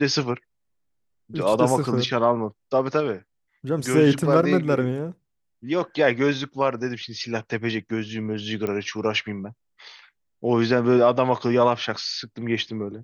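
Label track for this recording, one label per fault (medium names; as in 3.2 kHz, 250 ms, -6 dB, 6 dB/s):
8.670000	8.670000	pop -16 dBFS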